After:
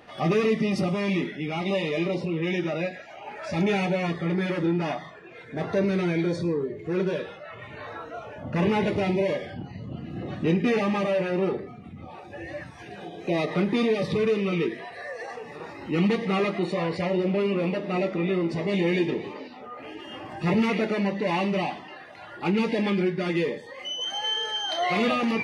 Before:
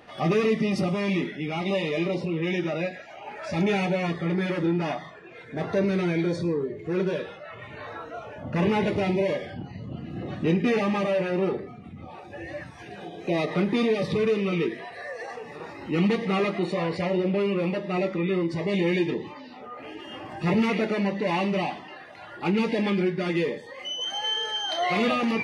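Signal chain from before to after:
0:16.92–0:19.48: echo with shifted repeats 263 ms, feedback 61%, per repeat +52 Hz, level −17 dB

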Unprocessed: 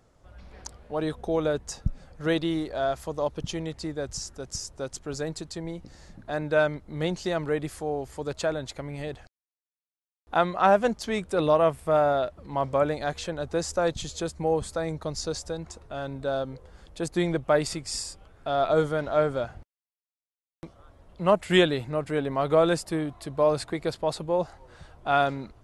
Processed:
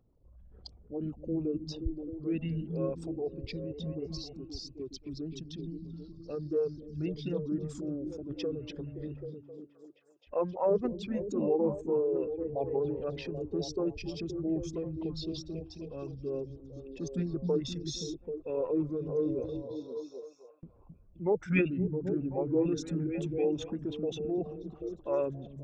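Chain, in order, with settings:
spectral envelope exaggerated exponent 2
formants moved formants −5 semitones
echo through a band-pass that steps 262 ms, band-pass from 160 Hz, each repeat 0.7 octaves, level −2 dB
level −7 dB

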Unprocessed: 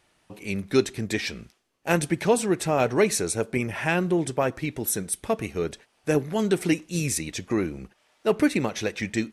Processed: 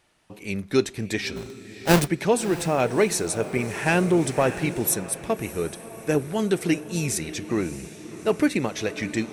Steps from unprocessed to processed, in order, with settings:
0:01.36–0:02.08: each half-wave held at its own peak
feedback delay with all-pass diffusion 630 ms, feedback 55%, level −14 dB
0:03.86–0:04.94: leveller curve on the samples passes 1

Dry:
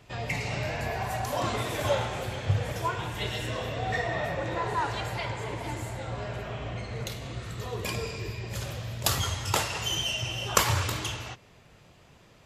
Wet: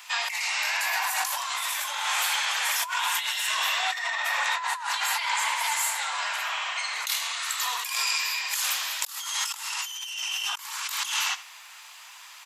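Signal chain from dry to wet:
Chebyshev high-pass filter 920 Hz, order 4
high-shelf EQ 5,300 Hz +11.5 dB
single-tap delay 80 ms −16.5 dB
compressor whose output falls as the input rises −38 dBFS, ratio −1
level +8 dB

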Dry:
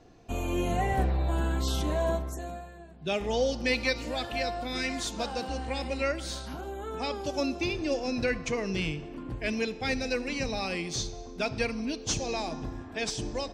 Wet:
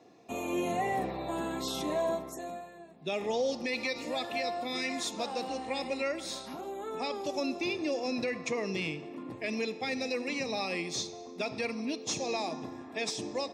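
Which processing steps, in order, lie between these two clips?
high-pass filter 170 Hz 12 dB per octave
brickwall limiter −22 dBFS, peak gain reduction 7.5 dB
notch comb filter 1,500 Hz

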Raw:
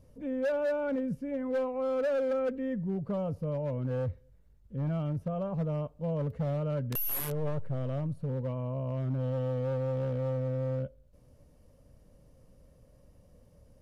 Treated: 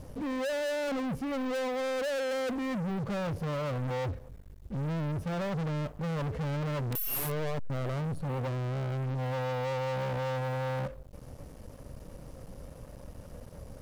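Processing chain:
leveller curve on the samples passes 5
level −5 dB

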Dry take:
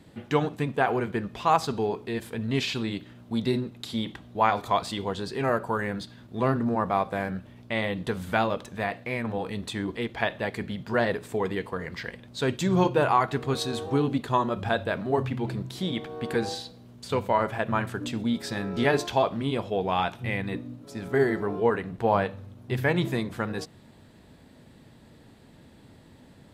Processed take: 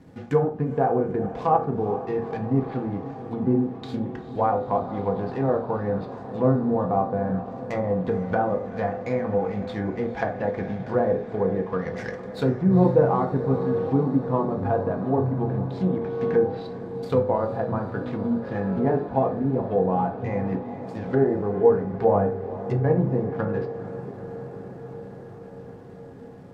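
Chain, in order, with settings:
running median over 15 samples
treble cut that deepens with the level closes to 750 Hz, closed at −24.5 dBFS
feedback delay with all-pass diffusion 458 ms, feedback 77%, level −14 dB
on a send at −2.5 dB: convolution reverb RT60 0.40 s, pre-delay 3 ms
on the sum: level +2 dB

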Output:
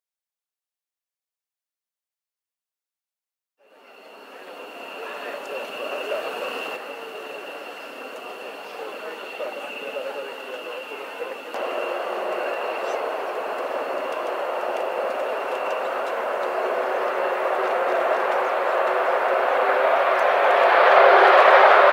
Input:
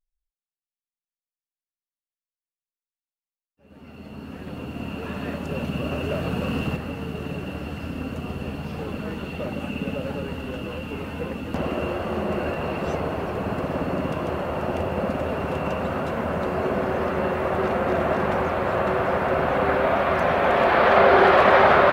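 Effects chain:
high-pass filter 450 Hz 24 dB per octave
level +3 dB

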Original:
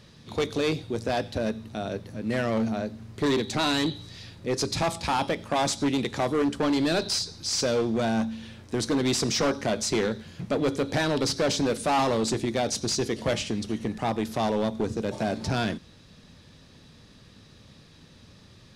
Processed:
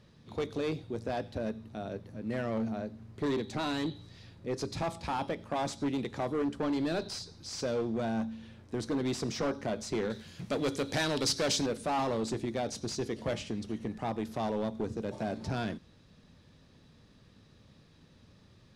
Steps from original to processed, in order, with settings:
high-shelf EQ 2,200 Hz −8 dB, from 0:10.10 +6.5 dB, from 0:11.66 −6 dB
level −6.5 dB

